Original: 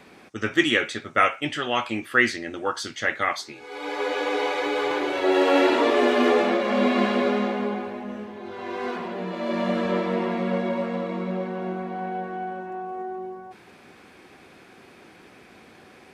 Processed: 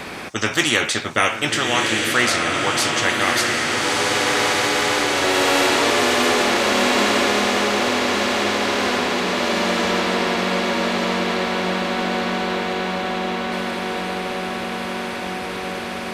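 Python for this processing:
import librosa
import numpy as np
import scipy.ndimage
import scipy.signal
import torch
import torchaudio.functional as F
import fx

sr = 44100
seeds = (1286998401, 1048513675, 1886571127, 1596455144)

p1 = x + fx.echo_diffused(x, sr, ms=1263, feedback_pct=60, wet_db=-5, dry=0)
p2 = fx.spectral_comp(p1, sr, ratio=2.0)
y = F.gain(torch.from_numpy(p2), 1.5).numpy()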